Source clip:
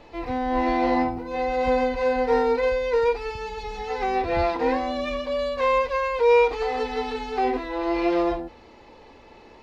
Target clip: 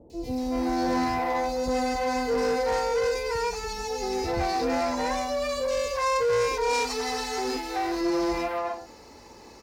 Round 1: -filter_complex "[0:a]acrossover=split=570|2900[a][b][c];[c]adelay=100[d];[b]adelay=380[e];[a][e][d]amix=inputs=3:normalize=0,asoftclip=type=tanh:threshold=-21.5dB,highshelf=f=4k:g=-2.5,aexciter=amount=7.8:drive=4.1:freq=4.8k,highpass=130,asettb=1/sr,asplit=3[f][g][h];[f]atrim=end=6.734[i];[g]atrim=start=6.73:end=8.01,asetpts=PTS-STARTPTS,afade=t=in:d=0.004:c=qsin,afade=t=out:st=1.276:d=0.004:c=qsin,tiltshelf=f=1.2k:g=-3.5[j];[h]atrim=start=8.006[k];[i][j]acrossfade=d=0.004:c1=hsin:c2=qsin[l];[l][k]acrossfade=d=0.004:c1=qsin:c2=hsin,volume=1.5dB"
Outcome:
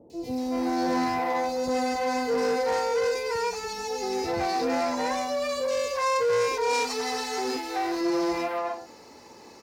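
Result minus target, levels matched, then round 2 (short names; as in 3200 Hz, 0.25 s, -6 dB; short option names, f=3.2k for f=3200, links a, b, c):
125 Hz band -5.5 dB
-filter_complex "[0:a]acrossover=split=570|2900[a][b][c];[c]adelay=100[d];[b]adelay=380[e];[a][e][d]amix=inputs=3:normalize=0,asoftclip=type=tanh:threshold=-21.5dB,highshelf=f=4k:g=-2.5,aexciter=amount=7.8:drive=4.1:freq=4.8k,highpass=39,asettb=1/sr,asplit=3[f][g][h];[f]atrim=end=6.734[i];[g]atrim=start=6.73:end=8.01,asetpts=PTS-STARTPTS,afade=t=in:d=0.004:c=qsin,afade=t=out:st=1.276:d=0.004:c=qsin,tiltshelf=f=1.2k:g=-3.5[j];[h]atrim=start=8.006[k];[i][j]acrossfade=d=0.004:c1=hsin:c2=qsin[l];[l][k]acrossfade=d=0.004:c1=qsin:c2=hsin,volume=1.5dB"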